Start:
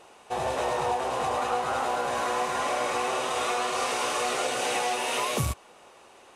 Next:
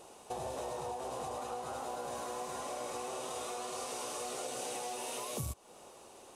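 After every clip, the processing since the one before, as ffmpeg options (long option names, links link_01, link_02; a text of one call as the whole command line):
ffmpeg -i in.wav -af "highshelf=frequency=7500:gain=6,acompressor=threshold=-37dB:ratio=4,equalizer=frequency=1900:width_type=o:width=1.8:gain=-10.5,volume=1dB" out.wav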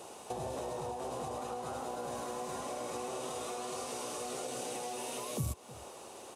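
ffmpeg -i in.wav -filter_complex "[0:a]acrossover=split=360[link_01][link_02];[link_02]acompressor=threshold=-45dB:ratio=4[link_03];[link_01][link_03]amix=inputs=2:normalize=0,highpass=71,asplit=2[link_04][link_05];[link_05]adelay=309,volume=-19dB,highshelf=frequency=4000:gain=-6.95[link_06];[link_04][link_06]amix=inputs=2:normalize=0,volume=5.5dB" out.wav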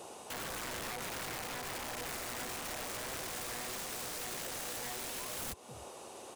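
ffmpeg -i in.wav -af "aeval=exprs='(mod(59.6*val(0)+1,2)-1)/59.6':channel_layout=same" out.wav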